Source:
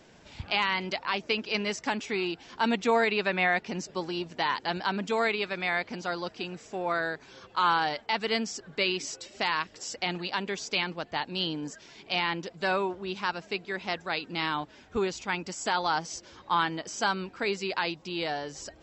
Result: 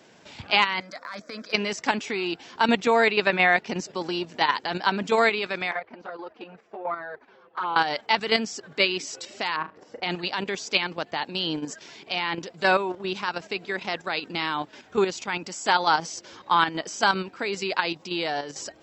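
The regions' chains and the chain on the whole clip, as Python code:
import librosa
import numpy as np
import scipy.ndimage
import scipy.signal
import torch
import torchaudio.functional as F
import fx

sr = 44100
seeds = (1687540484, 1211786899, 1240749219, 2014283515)

y = fx.chain(x, sr, fx.low_shelf(hz=320.0, db=-9.0),
    fx.transient(attack_db=-11, sustain_db=3),
    fx.fixed_phaser(hz=570.0, stages=8), at=(0.8, 1.53))
y = fx.chain(y, sr, fx.bessel_lowpass(hz=1200.0, order=2),
    fx.peak_eq(hz=150.0, db=-9.5, octaves=2.3),
    fx.env_flanger(rest_ms=7.3, full_db=-24.0), at=(5.71, 7.76))
y = fx.chain(y, sr, fx.lowpass(hz=1200.0, slope=12),
    fx.room_flutter(wall_m=6.4, rt60_s=0.23), at=(9.56, 10.03))
y = scipy.signal.sosfilt(scipy.signal.butter(2, 100.0, 'highpass', fs=sr, output='sos'), y)
y = fx.low_shelf(y, sr, hz=130.0, db=-8.0)
y = fx.level_steps(y, sr, step_db=9)
y = F.gain(torch.from_numpy(y), 8.5).numpy()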